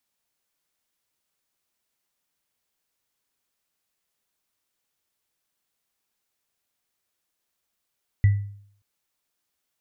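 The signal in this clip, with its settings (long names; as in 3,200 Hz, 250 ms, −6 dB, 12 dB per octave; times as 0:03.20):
inharmonic partials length 0.58 s, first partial 101 Hz, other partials 1,970 Hz, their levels −20 dB, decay 0.61 s, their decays 0.33 s, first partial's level −11 dB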